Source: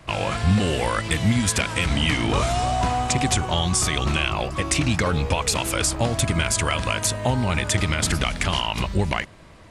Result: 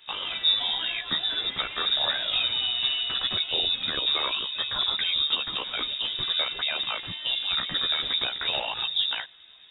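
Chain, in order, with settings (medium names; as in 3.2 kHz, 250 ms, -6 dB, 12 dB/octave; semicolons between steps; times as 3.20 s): chorus voices 6, 0.48 Hz, delay 13 ms, depth 2.1 ms; frequency inversion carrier 3.7 kHz; trim -4.5 dB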